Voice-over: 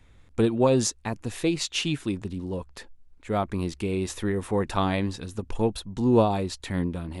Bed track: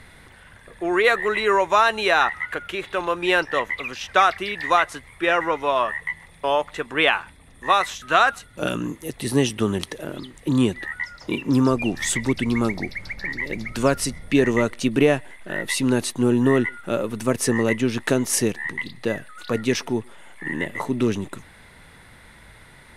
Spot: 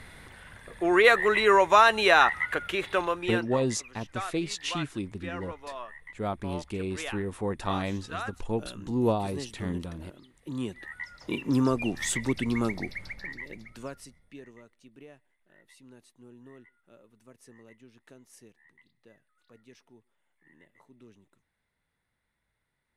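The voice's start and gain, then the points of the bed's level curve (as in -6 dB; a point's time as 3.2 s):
2.90 s, -5.5 dB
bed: 2.96 s -1 dB
3.6 s -19 dB
10.21 s -19 dB
11.35 s -6 dB
13.02 s -6 dB
14.64 s -33 dB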